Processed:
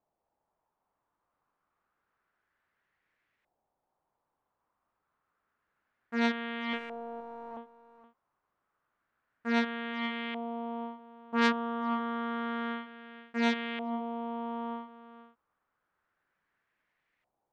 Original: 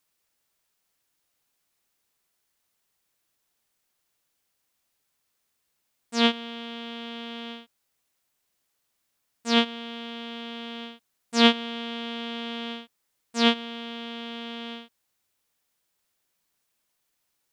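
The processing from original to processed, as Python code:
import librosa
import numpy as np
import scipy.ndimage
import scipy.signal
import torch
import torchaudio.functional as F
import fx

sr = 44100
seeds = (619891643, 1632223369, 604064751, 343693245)

y = fx.overflow_wrap(x, sr, gain_db=39.0, at=(6.73, 7.57))
y = y + 10.0 ** (-15.5 / 20.0) * np.pad(y, (int(471 * sr / 1000.0), 0))[:len(y)]
y = fx.filter_lfo_lowpass(y, sr, shape='saw_up', hz=0.29, low_hz=740.0, high_hz=2100.0, q=2.8)
y = fx.transformer_sat(y, sr, knee_hz=3000.0)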